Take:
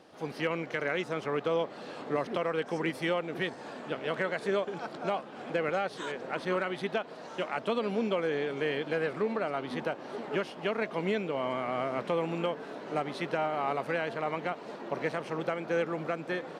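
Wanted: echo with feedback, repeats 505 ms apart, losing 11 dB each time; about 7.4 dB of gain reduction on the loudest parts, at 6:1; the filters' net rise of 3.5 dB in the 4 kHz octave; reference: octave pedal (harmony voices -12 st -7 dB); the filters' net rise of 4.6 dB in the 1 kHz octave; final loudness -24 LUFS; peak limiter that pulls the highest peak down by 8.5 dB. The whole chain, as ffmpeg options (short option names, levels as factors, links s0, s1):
-filter_complex "[0:a]equalizer=f=1000:t=o:g=6,equalizer=f=4000:t=o:g=4.5,acompressor=threshold=0.0282:ratio=6,alimiter=level_in=1.41:limit=0.0631:level=0:latency=1,volume=0.708,aecho=1:1:505|1010|1515:0.282|0.0789|0.0221,asplit=2[s0][s1];[s1]asetrate=22050,aresample=44100,atempo=2,volume=0.447[s2];[s0][s2]amix=inputs=2:normalize=0,volume=4.47"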